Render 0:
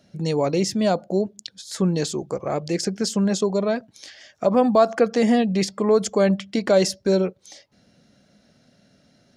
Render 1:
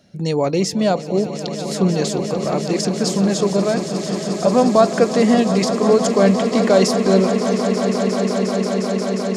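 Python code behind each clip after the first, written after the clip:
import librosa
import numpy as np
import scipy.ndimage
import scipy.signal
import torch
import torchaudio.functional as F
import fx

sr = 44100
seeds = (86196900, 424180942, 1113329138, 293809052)

y = fx.echo_swell(x, sr, ms=178, loudest=8, wet_db=-13.0)
y = y * librosa.db_to_amplitude(3.0)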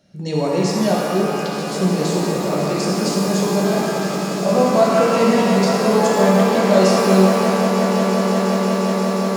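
y = fx.rev_shimmer(x, sr, seeds[0], rt60_s=2.1, semitones=12, shimmer_db=-8, drr_db=-3.5)
y = y * librosa.db_to_amplitude(-5.5)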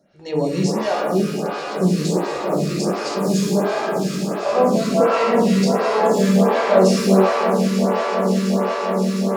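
y = fx.high_shelf(x, sr, hz=9200.0, db=-5.0)
y = fx.stagger_phaser(y, sr, hz=1.4)
y = y * librosa.db_to_amplitude(1.5)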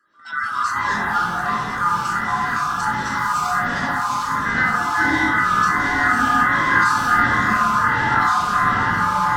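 y = fx.band_swap(x, sr, width_hz=1000)
y = fx.small_body(y, sr, hz=(250.0, 1000.0, 2000.0), ring_ms=30, db=12)
y = fx.echo_pitch(y, sr, ms=125, semitones=-3, count=3, db_per_echo=-3.0)
y = y * librosa.db_to_amplitude(-5.5)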